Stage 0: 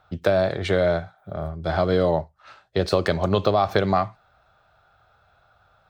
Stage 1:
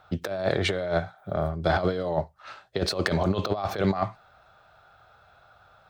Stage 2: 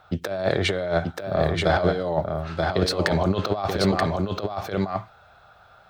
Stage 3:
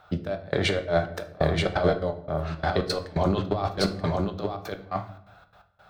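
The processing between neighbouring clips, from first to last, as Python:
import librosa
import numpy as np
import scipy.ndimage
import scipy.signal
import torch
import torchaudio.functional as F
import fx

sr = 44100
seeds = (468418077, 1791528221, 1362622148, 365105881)

y1 = fx.low_shelf(x, sr, hz=110.0, db=-6.0)
y1 = fx.over_compress(y1, sr, threshold_db=-24.0, ratio=-0.5)
y2 = y1 + 10.0 ** (-3.5 / 20.0) * np.pad(y1, (int(931 * sr / 1000.0), 0))[:len(y1)]
y2 = y2 * librosa.db_to_amplitude(2.5)
y3 = fx.step_gate(y2, sr, bpm=171, pattern='xx.x..xxx.', floor_db=-24.0, edge_ms=4.5)
y3 = fx.room_shoebox(y3, sr, seeds[0], volume_m3=110.0, walls='mixed', distance_m=0.35)
y3 = y3 * librosa.db_to_amplitude(-1.5)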